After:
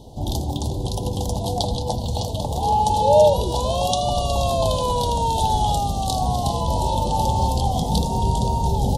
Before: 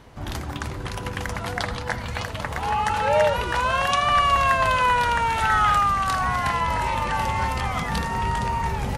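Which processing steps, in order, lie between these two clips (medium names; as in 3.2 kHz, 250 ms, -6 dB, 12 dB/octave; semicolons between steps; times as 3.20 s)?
elliptic band-stop 830–3500 Hz, stop band 40 dB; trim +7 dB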